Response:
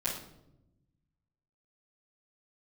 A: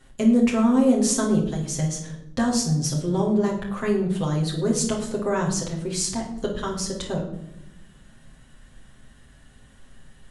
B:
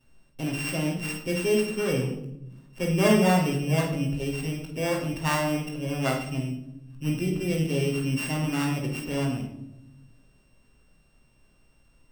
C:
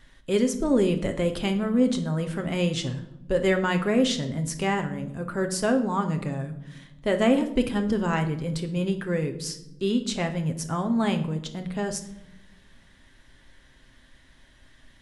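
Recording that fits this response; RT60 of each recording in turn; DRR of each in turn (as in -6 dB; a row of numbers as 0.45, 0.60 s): B; 0.85 s, 0.85 s, not exponential; -3.0, -11.0, 5.0 dB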